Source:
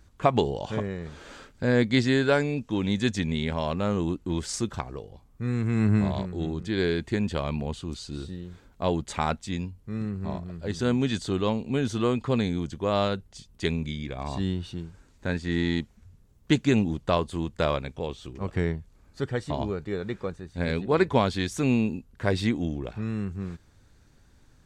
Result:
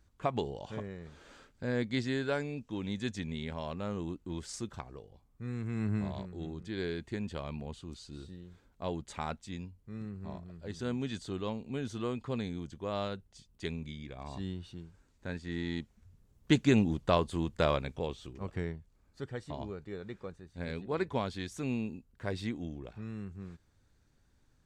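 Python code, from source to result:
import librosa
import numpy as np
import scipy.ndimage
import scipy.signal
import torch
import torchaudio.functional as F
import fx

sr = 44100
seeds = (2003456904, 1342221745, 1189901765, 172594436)

y = fx.gain(x, sr, db=fx.line((15.63, -10.5), (16.6, -3.0), (17.99, -3.0), (18.74, -11.0)))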